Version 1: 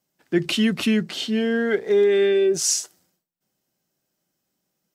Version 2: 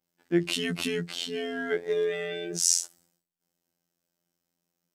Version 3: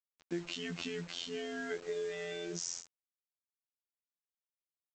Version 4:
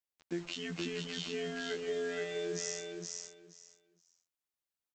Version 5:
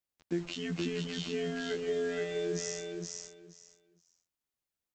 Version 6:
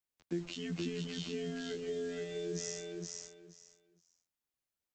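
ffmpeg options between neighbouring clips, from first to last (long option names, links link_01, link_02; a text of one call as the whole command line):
ffmpeg -i in.wav -af "adynamicequalizer=threshold=0.0112:dfrequency=9400:dqfactor=0.76:tfrequency=9400:tqfactor=0.76:attack=5:release=100:ratio=0.375:range=3:mode=boostabove:tftype=bell,afftfilt=real='hypot(re,im)*cos(PI*b)':imag='0':win_size=2048:overlap=0.75,volume=-2.5dB" out.wav
ffmpeg -i in.wav -af "acompressor=threshold=-32dB:ratio=4,aresample=16000,acrusher=bits=7:mix=0:aa=0.000001,aresample=44100,volume=-4dB" out.wav
ffmpeg -i in.wav -af "aecho=1:1:471|942|1413:0.668|0.127|0.0241" out.wav
ffmpeg -i in.wav -af "lowshelf=frequency=390:gain=7.5" out.wav
ffmpeg -i in.wav -filter_complex "[0:a]acrossover=split=430|3000[link_01][link_02][link_03];[link_02]acompressor=threshold=-45dB:ratio=6[link_04];[link_01][link_04][link_03]amix=inputs=3:normalize=0,volume=-2.5dB" out.wav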